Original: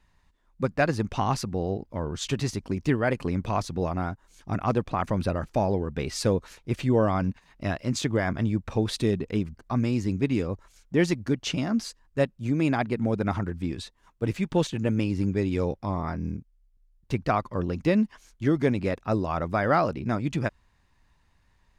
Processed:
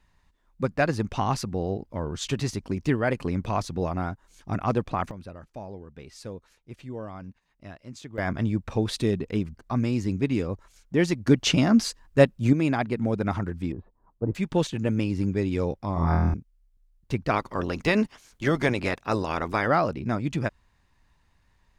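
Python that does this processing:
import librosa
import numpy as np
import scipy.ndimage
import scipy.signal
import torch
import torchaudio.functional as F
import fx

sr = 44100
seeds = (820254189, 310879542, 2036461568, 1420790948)

y = fx.lowpass(x, sr, hz=1000.0, slope=24, at=(13.72, 14.35))
y = fx.room_flutter(y, sr, wall_m=4.1, rt60_s=0.81, at=(15.94, 16.34))
y = fx.spec_clip(y, sr, under_db=15, at=(17.3, 19.66), fade=0.02)
y = fx.edit(y, sr, fx.fade_down_up(start_s=4.9, length_s=3.49, db=-14.5, fade_s=0.21, curve='log'),
    fx.clip_gain(start_s=11.27, length_s=1.26, db=7.0), tone=tone)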